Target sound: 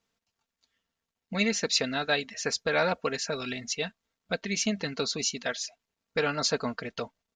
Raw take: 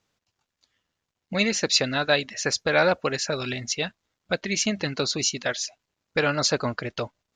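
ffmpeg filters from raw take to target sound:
-af "aecho=1:1:4.4:0.49,volume=0.531"

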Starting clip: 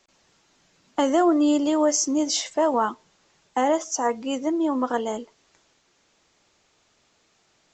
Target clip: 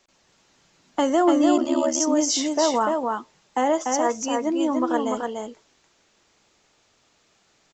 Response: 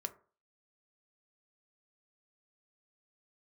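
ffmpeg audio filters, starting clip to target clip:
-filter_complex "[0:a]aecho=1:1:293:0.668,asplit=3[s0][s1][s2];[s0]afade=t=out:st=1.56:d=0.02[s3];[s1]aeval=exprs='val(0)*sin(2*PI*37*n/s)':c=same,afade=t=in:st=1.56:d=0.02,afade=t=out:st=1.99:d=0.02[s4];[s2]afade=t=in:st=1.99:d=0.02[s5];[s3][s4][s5]amix=inputs=3:normalize=0"

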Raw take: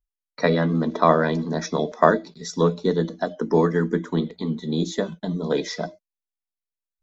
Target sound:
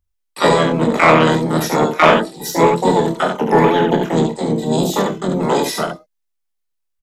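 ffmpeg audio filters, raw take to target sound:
-filter_complex "[0:a]aecho=1:1:26|75:0.501|0.562,asplit=4[s0][s1][s2][s3];[s1]asetrate=35002,aresample=44100,atempo=1.25992,volume=0.282[s4];[s2]asetrate=55563,aresample=44100,atempo=0.793701,volume=0.282[s5];[s3]asetrate=88200,aresample=44100,atempo=0.5,volume=0.794[s6];[s0][s4][s5][s6]amix=inputs=4:normalize=0,acontrast=44,volume=0.891"

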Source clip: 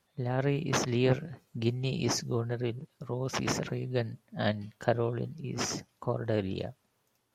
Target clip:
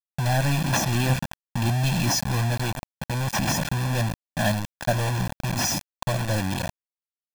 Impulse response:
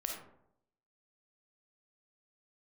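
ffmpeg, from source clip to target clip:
-af "aeval=exprs='val(0)+0.5*0.0355*sgn(val(0))':c=same,acontrast=69,acrusher=bits=3:mix=0:aa=0.000001,aecho=1:1:1.2:0.87,volume=0.473"

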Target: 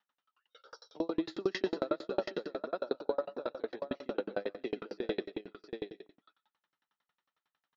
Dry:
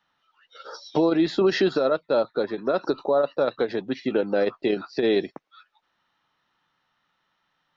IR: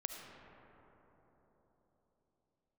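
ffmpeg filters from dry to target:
-filter_complex "[0:a]highpass=200,aecho=1:1:700:0.501,asplit=2[s0][s1];[1:a]atrim=start_sample=2205,atrim=end_sample=6174,adelay=119[s2];[s1][s2]afir=irnorm=-1:irlink=0,volume=0.376[s3];[s0][s3]amix=inputs=2:normalize=0,aeval=exprs='val(0)*pow(10,-36*if(lt(mod(11*n/s,1),2*abs(11)/1000),1-mod(11*n/s,1)/(2*abs(11)/1000),(mod(11*n/s,1)-2*abs(11)/1000)/(1-2*abs(11)/1000))/20)':c=same,volume=0.562"

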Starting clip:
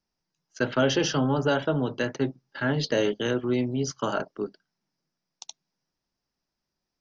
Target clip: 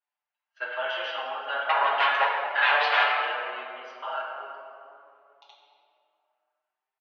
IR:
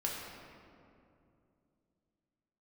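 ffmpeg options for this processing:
-filter_complex "[0:a]asettb=1/sr,asplit=3[s0][s1][s2];[s0]atrim=end=1.694[s3];[s1]atrim=start=1.69:end=3.03,asetpts=PTS-STARTPTS,afade=t=in:d=0.004:c=qsin,afade=t=out:st=1.336:d=0.004:c=qsin,aeval=exprs='0.237*sin(PI/2*4.47*val(0)/0.237)':c=same[s4];[s2]atrim=start=3.026[s5];[s3][s4]acrossfade=d=0.004:c1=hsin:c2=qsin[s6];[s6][s5]acrossfade=d=0.004:c1=qsin:c2=hsin,asuperpass=centerf=1500:order=8:qfactor=0.59[s7];[1:a]atrim=start_sample=2205[s8];[s7][s8]afir=irnorm=-1:irlink=0,asplit=2[s9][s10];[s10]adelay=6.4,afreqshift=0.33[s11];[s9][s11]amix=inputs=2:normalize=1"

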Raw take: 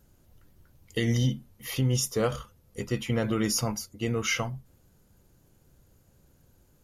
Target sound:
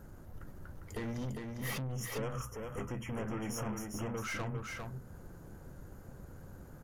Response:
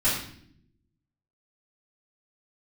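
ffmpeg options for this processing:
-filter_complex "[0:a]highshelf=f=2100:t=q:w=1.5:g=-9.5,bandreject=f=60:t=h:w=6,bandreject=f=120:t=h:w=6,acompressor=threshold=0.00794:ratio=5,aeval=exprs='(tanh(224*val(0)+0.3)-tanh(0.3))/224':c=same,asettb=1/sr,asplit=3[s0][s1][s2];[s0]atrim=end=1.924[s3];[s1]atrim=start=1.92:end=4.18,asetpts=PTS-STARTPTS,afade=t=in:d=0.004:c=qsin,afade=t=out:st=2.256:d=0.004:c=qsin,asuperstop=centerf=4200:order=20:qfactor=2.2[s4];[s2]atrim=start=4.176[s5];[s3][s4]acrossfade=d=0.004:c1=hsin:c2=qsin[s6];[s6][s5]acrossfade=d=0.004:c1=qsin:c2=hsin,aecho=1:1:402:0.596,volume=3.76"

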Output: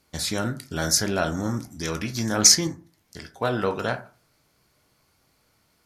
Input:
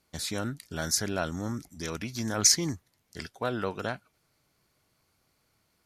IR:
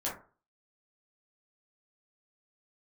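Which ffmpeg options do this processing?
-filter_complex "[0:a]asettb=1/sr,asplit=3[s0][s1][s2];[s0]atrim=end=2.674[s3];[s1]atrim=start=2.67:end=3.37,asetpts=PTS-STARTPTS,afade=t=in:d=0.004:c=qsin,afade=t=out:st=0.696:d=0.004:c=qsin,acompressor=threshold=0.00794:ratio=6[s4];[s2]atrim=start=3.366[s5];[s3][s4]acrossfade=d=0.004:c1=hsin:c2=qsin[s6];[s6][s5]acrossfade=d=0.004:c1=qsin:c2=hsin,asplit=2[s7][s8];[s8]equalizer=f=5100:w=5.4:g=6[s9];[1:a]atrim=start_sample=2205[s10];[s9][s10]afir=irnorm=-1:irlink=0,volume=0.355[s11];[s7][s11]amix=inputs=2:normalize=0,volume=1.5"

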